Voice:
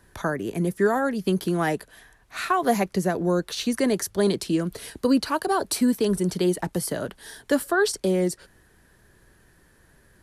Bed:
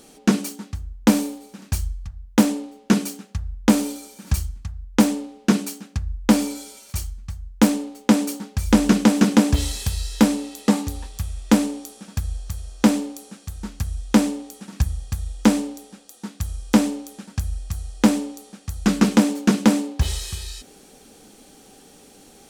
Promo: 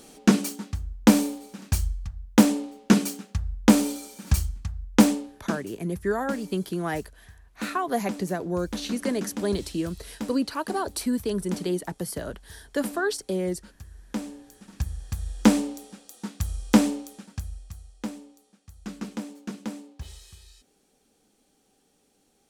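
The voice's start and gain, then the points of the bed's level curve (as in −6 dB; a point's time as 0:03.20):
5.25 s, −5.0 dB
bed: 0:05.09 −0.5 dB
0:05.72 −18.5 dB
0:13.92 −18.5 dB
0:15.41 −1.5 dB
0:16.91 −1.5 dB
0:18.12 −18.5 dB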